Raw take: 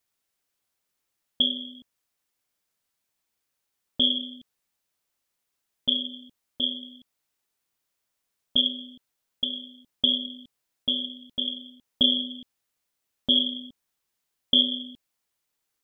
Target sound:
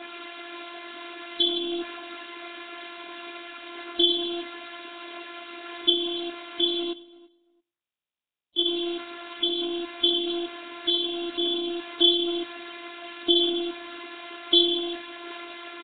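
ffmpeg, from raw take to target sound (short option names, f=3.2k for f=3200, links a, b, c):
-filter_complex "[0:a]aeval=exprs='val(0)+0.5*0.0531*sgn(val(0))':c=same,asplit=3[a][b][c];[a]afade=t=out:st=6.92:d=0.02[d];[b]agate=range=-60dB:threshold=-18dB:ratio=16:detection=peak,afade=t=in:st=6.92:d=0.02,afade=t=out:st=8.64:d=0.02[e];[c]afade=t=in:st=8.64:d=0.02[f];[d][e][f]amix=inputs=3:normalize=0,highpass=220,afftdn=nr=12:nf=-43,asplit=2[g][h];[h]aecho=0:1:106|212:0.0794|0.0127[i];[g][i]amix=inputs=2:normalize=0,aphaser=in_gain=1:out_gain=1:delay=4.5:decay=0.24:speed=0.52:type=sinusoidal,asplit=2[j][k];[k]adelay=337,lowpass=f=1.5k:p=1,volume=-20dB,asplit=2[l][m];[m]adelay=337,lowpass=f=1.5k:p=1,volume=0.17[n];[l][n]amix=inputs=2:normalize=0[o];[j][o]amix=inputs=2:normalize=0,afftfilt=real='hypot(re,im)*cos(PI*b)':imag='0':win_size=512:overlap=0.75,equalizer=f=310:w=2.3:g=4.5,volume=5.5dB" -ar 8000 -c:a nellymoser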